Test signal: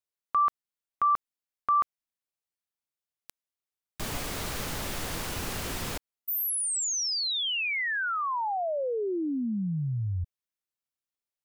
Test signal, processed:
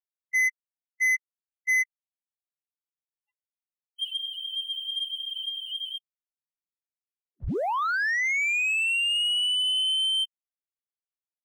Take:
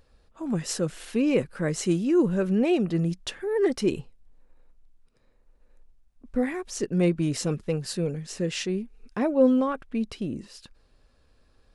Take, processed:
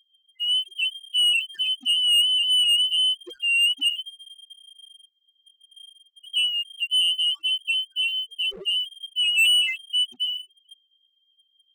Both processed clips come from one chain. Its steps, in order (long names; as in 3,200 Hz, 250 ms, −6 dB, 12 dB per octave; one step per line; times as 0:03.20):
voice inversion scrambler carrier 3,200 Hz
spectral peaks only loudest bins 2
leveller curve on the samples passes 2